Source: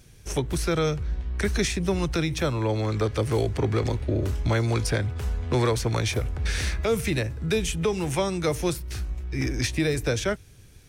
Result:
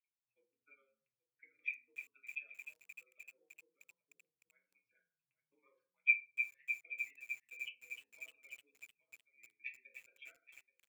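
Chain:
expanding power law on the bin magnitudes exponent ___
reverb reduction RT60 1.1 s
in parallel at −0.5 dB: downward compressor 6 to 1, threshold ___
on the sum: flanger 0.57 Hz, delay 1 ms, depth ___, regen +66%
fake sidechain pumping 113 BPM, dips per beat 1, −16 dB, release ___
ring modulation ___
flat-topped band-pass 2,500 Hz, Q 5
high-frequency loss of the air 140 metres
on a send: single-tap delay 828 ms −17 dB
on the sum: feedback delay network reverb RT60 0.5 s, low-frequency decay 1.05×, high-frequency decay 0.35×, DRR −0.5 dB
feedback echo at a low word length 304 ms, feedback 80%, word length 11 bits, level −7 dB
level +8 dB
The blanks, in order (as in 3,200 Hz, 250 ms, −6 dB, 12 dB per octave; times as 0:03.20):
3.1, −34 dBFS, 7.1 ms, 102 ms, 69 Hz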